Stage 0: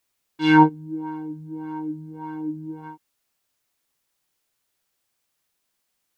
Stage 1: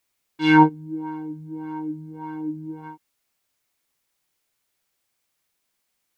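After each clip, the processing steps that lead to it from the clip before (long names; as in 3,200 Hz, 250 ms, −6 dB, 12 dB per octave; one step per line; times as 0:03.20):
parametric band 2,200 Hz +3.5 dB 0.21 octaves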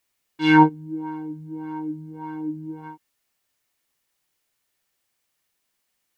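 hollow resonant body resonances 1,800/2,900 Hz, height 9 dB, ringing for 95 ms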